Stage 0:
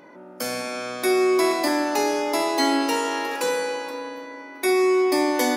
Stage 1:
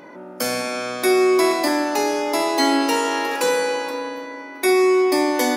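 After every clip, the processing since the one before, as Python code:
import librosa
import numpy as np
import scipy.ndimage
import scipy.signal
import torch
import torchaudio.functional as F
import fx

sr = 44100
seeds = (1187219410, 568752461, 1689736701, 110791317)

y = fx.rider(x, sr, range_db=4, speed_s=2.0)
y = y * librosa.db_to_amplitude(2.5)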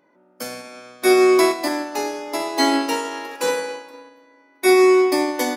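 y = fx.upward_expand(x, sr, threshold_db=-30.0, expansion=2.5)
y = y * librosa.db_to_amplitude(3.5)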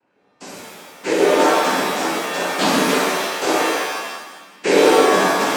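y = fx.rider(x, sr, range_db=3, speed_s=0.5)
y = fx.noise_vocoder(y, sr, seeds[0], bands=8)
y = fx.rev_shimmer(y, sr, seeds[1], rt60_s=1.0, semitones=7, shimmer_db=-2, drr_db=-2.0)
y = y * librosa.db_to_amplitude(-4.0)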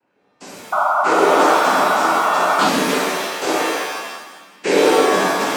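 y = fx.spec_paint(x, sr, seeds[2], shape='noise', start_s=0.72, length_s=1.97, low_hz=580.0, high_hz=1500.0, level_db=-16.0)
y = y * librosa.db_to_amplitude(-1.0)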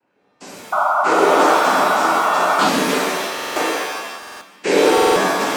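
y = fx.buffer_glitch(x, sr, at_s=(3.33, 4.18, 4.93), block=2048, repeats=4)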